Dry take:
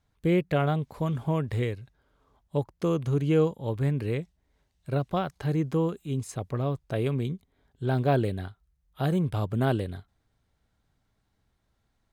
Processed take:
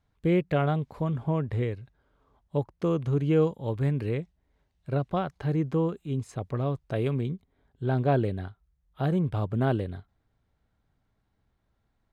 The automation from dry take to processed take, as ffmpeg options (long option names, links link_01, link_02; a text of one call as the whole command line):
ffmpeg -i in.wav -af "asetnsamples=nb_out_samples=441:pad=0,asendcmd='1.01 lowpass f 1700;1.71 lowpass f 2900;3.43 lowpass f 5100;4.09 lowpass f 2700;6.43 lowpass f 4500;7.21 lowpass f 2300',lowpass=frequency=3500:poles=1" out.wav